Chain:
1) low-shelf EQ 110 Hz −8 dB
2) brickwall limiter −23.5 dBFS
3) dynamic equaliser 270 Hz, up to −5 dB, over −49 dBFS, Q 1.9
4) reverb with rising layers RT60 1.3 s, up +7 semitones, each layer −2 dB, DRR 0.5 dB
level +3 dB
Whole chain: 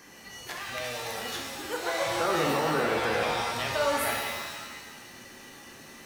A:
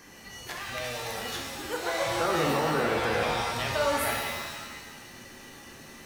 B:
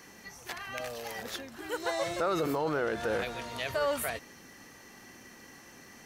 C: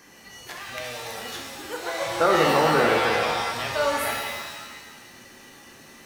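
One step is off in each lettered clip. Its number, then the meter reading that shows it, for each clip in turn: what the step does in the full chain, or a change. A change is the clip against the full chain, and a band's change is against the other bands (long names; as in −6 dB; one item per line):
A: 1, 125 Hz band +3.0 dB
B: 4, 500 Hz band +3.5 dB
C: 2, change in crest factor +2.5 dB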